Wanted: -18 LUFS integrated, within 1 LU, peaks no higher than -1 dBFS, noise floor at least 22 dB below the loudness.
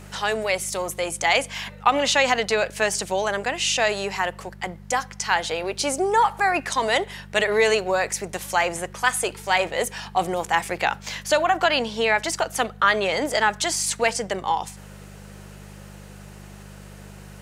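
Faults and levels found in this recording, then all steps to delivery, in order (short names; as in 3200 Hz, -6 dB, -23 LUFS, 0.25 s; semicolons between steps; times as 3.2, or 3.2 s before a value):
hum 50 Hz; harmonics up to 200 Hz; hum level -41 dBFS; loudness -23.0 LUFS; peak -4.5 dBFS; loudness target -18.0 LUFS
-> de-hum 50 Hz, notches 4; gain +5 dB; limiter -1 dBFS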